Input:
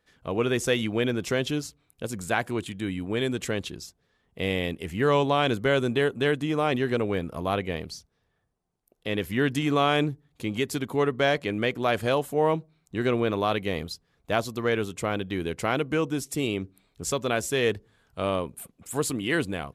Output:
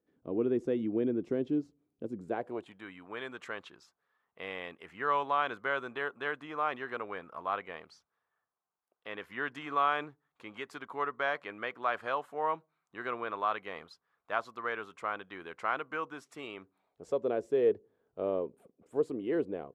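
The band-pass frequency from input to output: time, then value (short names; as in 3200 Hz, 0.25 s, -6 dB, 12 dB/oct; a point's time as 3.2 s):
band-pass, Q 2.2
2.23 s 310 Hz
2.86 s 1200 Hz
16.59 s 1200 Hz
17.26 s 430 Hz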